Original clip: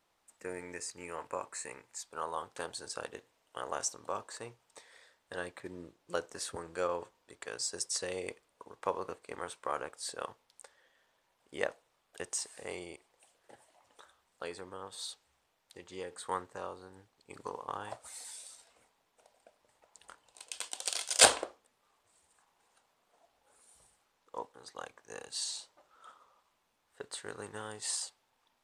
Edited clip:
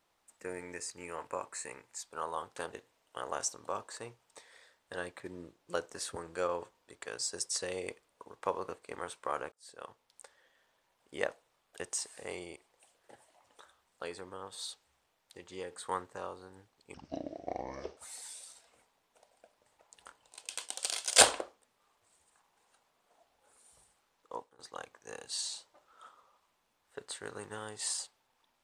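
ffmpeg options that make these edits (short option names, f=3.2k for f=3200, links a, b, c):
-filter_complex "[0:a]asplit=6[a][b][c][d][e][f];[a]atrim=end=2.732[g];[b]atrim=start=3.128:end=9.92,asetpts=PTS-STARTPTS,afade=t=out:st=6.788:d=0.004:c=hsin[h];[c]atrim=start=9.92:end=17.344,asetpts=PTS-STARTPTS,afade=t=in:d=0.7[i];[d]atrim=start=17.34:end=18,asetpts=PTS-STARTPTS,asetrate=28224,aresample=44100,atrim=end_sample=45478,asetpts=PTS-STARTPTS[j];[e]atrim=start=17.996:end=24.62,asetpts=PTS-STARTPTS,afade=t=out:st=6.354:d=0.27:silence=0.16788[k];[f]atrim=start=24.62,asetpts=PTS-STARTPTS,afade=t=in:d=0.004:c=hsin:silence=0.16788[l];[h][i]concat=n=2:v=0:a=1[m];[g][m]acrossfade=d=0.004:c1=hsin:c2=hsin[n];[n][j]acrossfade=d=0.004:c1=hsin:c2=hsin[o];[k][l]concat=n=2:v=0:a=1[p];[o][p]acrossfade=d=0.004:c1=hsin:c2=hsin"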